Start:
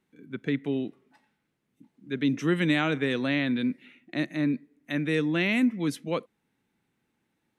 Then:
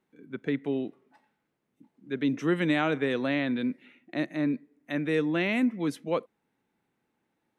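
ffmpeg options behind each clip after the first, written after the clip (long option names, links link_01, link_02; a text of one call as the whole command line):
ffmpeg -i in.wav -af "equalizer=frequency=680:width_type=o:width=2.6:gain=8,volume=-5.5dB" out.wav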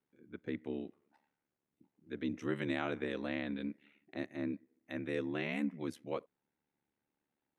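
ffmpeg -i in.wav -af "aeval=exprs='val(0)*sin(2*PI*36*n/s)':channel_layout=same,volume=-7.5dB" out.wav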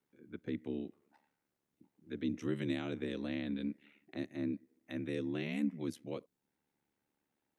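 ffmpeg -i in.wav -filter_complex "[0:a]acrossover=split=400|3000[link_01][link_02][link_03];[link_02]acompressor=threshold=-59dB:ratio=2[link_04];[link_01][link_04][link_03]amix=inputs=3:normalize=0,volume=2.5dB" out.wav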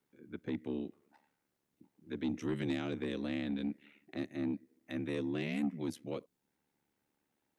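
ffmpeg -i in.wav -af "asoftclip=type=tanh:threshold=-29dB,volume=2.5dB" out.wav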